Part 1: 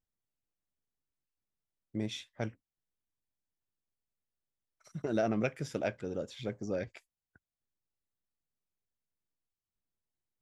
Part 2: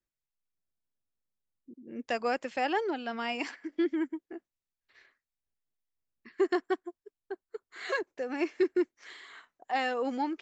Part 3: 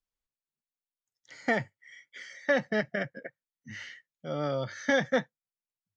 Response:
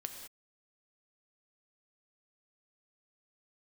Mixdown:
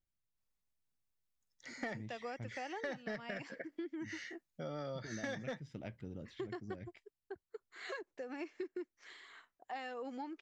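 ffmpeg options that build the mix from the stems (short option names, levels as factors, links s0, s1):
-filter_complex "[0:a]lowpass=3100,equalizer=f=880:w=0.4:g=-12.5,aecho=1:1:1:0.35,volume=0.944[s0];[1:a]volume=0.447[s1];[2:a]bandreject=f=3100:w=8.3,asoftclip=type=tanh:threshold=0.133,adynamicequalizer=threshold=0.00501:dfrequency=3100:dqfactor=0.7:tfrequency=3100:tqfactor=0.7:attack=5:release=100:ratio=0.375:range=2:mode=boostabove:tftype=highshelf,adelay=350,volume=0.891[s2];[s0][s1][s2]amix=inputs=3:normalize=0,acompressor=threshold=0.00891:ratio=4"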